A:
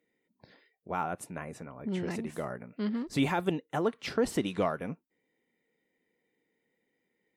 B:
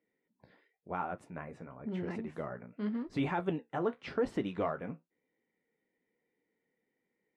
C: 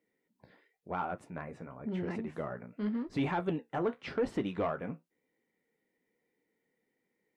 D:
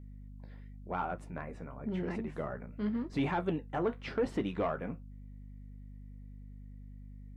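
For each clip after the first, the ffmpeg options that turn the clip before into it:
-af "lowpass=1.8k,aemphasis=mode=production:type=75kf,flanger=delay=8.9:depth=8.3:regen=-51:speed=0.92:shape=triangular"
-af "asoftclip=type=tanh:threshold=-24dB,volume=2dB"
-af "aeval=exprs='val(0)+0.00447*(sin(2*PI*50*n/s)+sin(2*PI*2*50*n/s)/2+sin(2*PI*3*50*n/s)/3+sin(2*PI*4*50*n/s)/4+sin(2*PI*5*50*n/s)/5)':c=same"

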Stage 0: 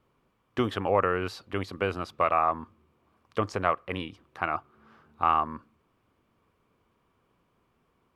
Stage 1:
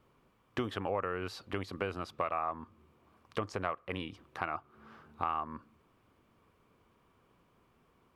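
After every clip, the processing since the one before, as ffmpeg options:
-af "acompressor=threshold=-38dB:ratio=2.5,volume=2dB"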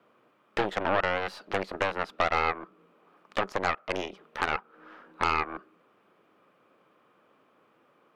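-af "afreqshift=93,aeval=exprs='0.15*(cos(1*acos(clip(val(0)/0.15,-1,1)))-cos(1*PI/2))+0.0376*(cos(8*acos(clip(val(0)/0.15,-1,1)))-cos(8*PI/2))':c=same,bass=f=250:g=-11,treble=f=4k:g=-10,volume=6dB"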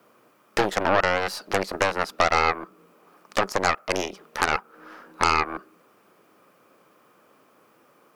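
-af "aexciter=amount=3.1:drive=6.6:freq=4.7k,volume=5.5dB"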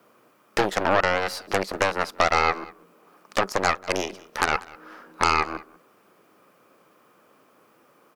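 -af "aecho=1:1:192:0.0841"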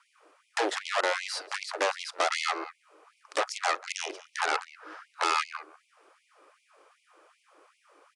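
-af "volume=20dB,asoftclip=hard,volume=-20dB,aresample=22050,aresample=44100,afftfilt=real='re*gte(b*sr/1024,260*pow(2100/260,0.5+0.5*sin(2*PI*2.6*pts/sr)))':imag='im*gte(b*sr/1024,260*pow(2100/260,0.5+0.5*sin(2*PI*2.6*pts/sr)))':win_size=1024:overlap=0.75"

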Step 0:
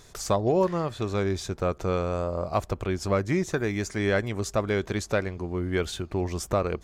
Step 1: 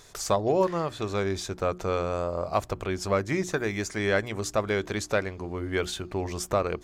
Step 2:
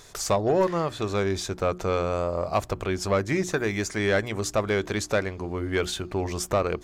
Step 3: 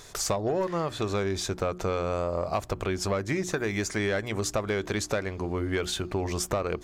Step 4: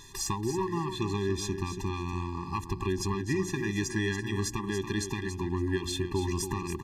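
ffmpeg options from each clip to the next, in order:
-af "lowshelf=f=330:g=-5.5,bandreject=f=60:t=h:w=6,bandreject=f=120:t=h:w=6,bandreject=f=180:t=h:w=6,bandreject=f=240:t=h:w=6,bandreject=f=300:t=h:w=6,bandreject=f=360:t=h:w=6,volume=1.5dB"
-af "asoftclip=type=tanh:threshold=-16dB,volume=3dB"
-af "acompressor=threshold=-26dB:ratio=6,volume=1.5dB"
-af "aecho=1:1:282|564|846:0.355|0.0639|0.0115,afftfilt=real='re*eq(mod(floor(b*sr/1024/400),2),0)':imag='im*eq(mod(floor(b*sr/1024/400),2),0)':win_size=1024:overlap=0.75"

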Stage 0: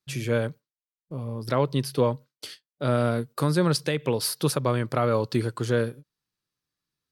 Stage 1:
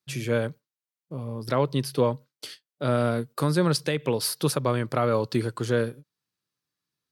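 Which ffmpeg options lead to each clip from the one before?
-af "highpass=93"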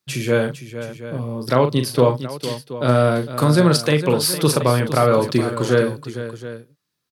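-af "aecho=1:1:40|456|724:0.422|0.251|0.178,volume=7dB"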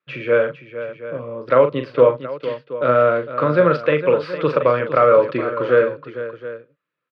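-af "highpass=220,equalizer=f=220:t=q:w=4:g=-9,equalizer=f=370:t=q:w=4:g=-4,equalizer=f=530:t=q:w=4:g=9,equalizer=f=790:t=q:w=4:g=-9,equalizer=f=1.3k:t=q:w=4:g=6,equalizer=f=2.5k:t=q:w=4:g=3,lowpass=f=2.6k:w=0.5412,lowpass=f=2.6k:w=1.3066"

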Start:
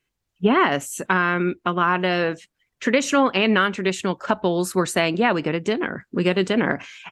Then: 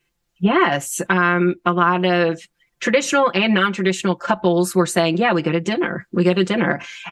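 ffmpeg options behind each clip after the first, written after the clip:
-filter_complex "[0:a]aecho=1:1:5.8:0.95,asplit=2[a][b];[b]acompressor=threshold=-24dB:ratio=6,volume=1.5dB[c];[a][c]amix=inputs=2:normalize=0,volume=-3dB"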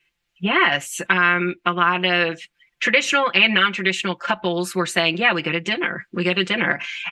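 -af "equalizer=f=2.5k:t=o:w=1.7:g=14,volume=-7dB"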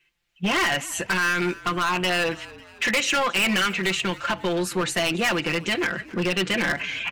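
-filter_complex "[0:a]acrossover=split=5300[a][b];[a]asoftclip=type=hard:threshold=-19.5dB[c];[c][b]amix=inputs=2:normalize=0,asplit=5[d][e][f][g][h];[e]adelay=273,afreqshift=-46,volume=-20dB[i];[f]adelay=546,afreqshift=-92,volume=-26.2dB[j];[g]adelay=819,afreqshift=-138,volume=-32.4dB[k];[h]adelay=1092,afreqshift=-184,volume=-38.6dB[l];[d][i][j][k][l]amix=inputs=5:normalize=0"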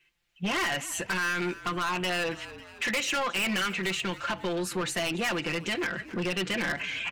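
-filter_complex "[0:a]asplit=2[a][b];[b]acompressor=threshold=-31dB:ratio=6,volume=0dB[c];[a][c]amix=inputs=2:normalize=0,asoftclip=type=tanh:threshold=-16dB,volume=-7dB"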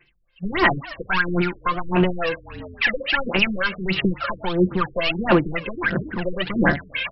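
-af "aphaser=in_gain=1:out_gain=1:delay=1.9:decay=0.76:speed=1.5:type=sinusoidal,afftfilt=real='re*lt(b*sr/1024,440*pow(5700/440,0.5+0.5*sin(2*PI*3.6*pts/sr)))':imag='im*lt(b*sr/1024,440*pow(5700/440,0.5+0.5*sin(2*PI*3.6*pts/sr)))':win_size=1024:overlap=0.75,volume=5.5dB"

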